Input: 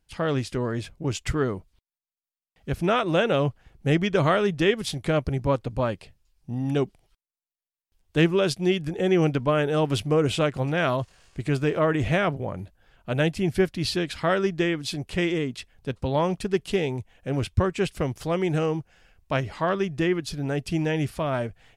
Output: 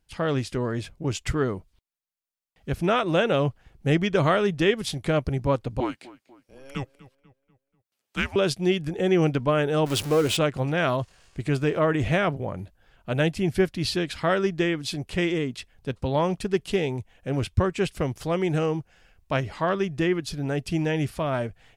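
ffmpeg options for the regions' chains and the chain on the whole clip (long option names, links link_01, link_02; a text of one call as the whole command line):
ffmpeg -i in.wav -filter_complex "[0:a]asettb=1/sr,asplit=3[link_01][link_02][link_03];[link_01]atrim=end=5.804[link_04];[link_02]atrim=start=5.8:end=8.36,asetpts=PTS-STARTPTS,afade=type=in:duration=0.004:curve=qsin,afade=type=out:start_time=2.556:duration=0.004:curve=qsin,highpass=frequency=500:width=0.5412,highpass=frequency=500:width=1.3066,afreqshift=-270,asplit=2[link_05][link_06];[link_06]adelay=244,lowpass=frequency=3200:poles=1,volume=-18.5dB,asplit=2[link_07][link_08];[link_08]adelay=244,lowpass=frequency=3200:poles=1,volume=0.46,asplit=2[link_09][link_10];[link_10]adelay=244,lowpass=frequency=3200:poles=1,volume=0.46,asplit=2[link_11][link_12];[link_12]adelay=244,lowpass=frequency=3200:poles=1,volume=0.46[link_13];[link_05][link_07][link_09][link_11][link_13]amix=inputs=5:normalize=0,atrim=end_sample=112896[link_14];[link_03]atrim=start=8.356[link_15];[link_04][link_14]acrossfade=duration=0.004:curve1=hsin:curve2=qsin[link_16];[link_16][link_15]acrossfade=duration=0.004:curve1=qsin:curve2=hsin,asettb=1/sr,asplit=3[link_17][link_18][link_19];[link_17]atrim=end=9.864[link_20];[link_18]atrim=start=9.86:end=10.37,asetpts=PTS-STARTPTS,afade=type=in:duration=0.004:curve=qsin,afade=type=out:start_time=0.506:duration=0.004:curve=qsin,aeval=exprs='val(0)+0.5*0.0376*sgn(val(0))':channel_layout=same,bass=frequency=250:gain=-6,treble=frequency=4000:gain=3[link_21];[link_19]atrim=start=10.366[link_22];[link_20][link_21]acrossfade=duration=0.004:curve1=hsin:curve2=qsin[link_23];[link_23][link_22]acrossfade=duration=0.004:curve1=qsin:curve2=hsin" out.wav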